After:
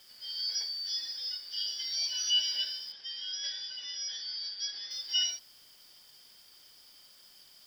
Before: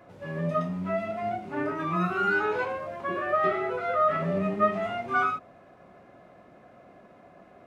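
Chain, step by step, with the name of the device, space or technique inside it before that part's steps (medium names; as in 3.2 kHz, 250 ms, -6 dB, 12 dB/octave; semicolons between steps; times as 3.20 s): split-band scrambled radio (four frequency bands reordered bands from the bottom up 4321; band-pass 340–2900 Hz; white noise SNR 27 dB); 2.92–4.91 s: distance through air 140 m; trim +3.5 dB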